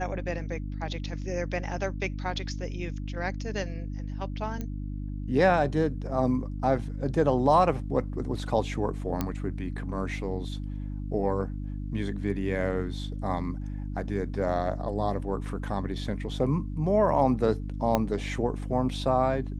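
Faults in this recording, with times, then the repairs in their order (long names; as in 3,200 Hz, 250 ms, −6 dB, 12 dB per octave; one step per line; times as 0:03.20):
mains hum 50 Hz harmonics 6 −34 dBFS
0:04.61: click −21 dBFS
0:09.21: click −14 dBFS
0:17.95: click −10 dBFS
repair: click removal
hum removal 50 Hz, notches 6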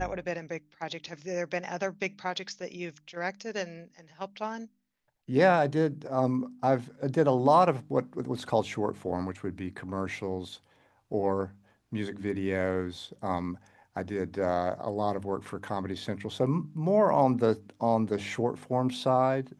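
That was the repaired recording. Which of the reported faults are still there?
0:17.95: click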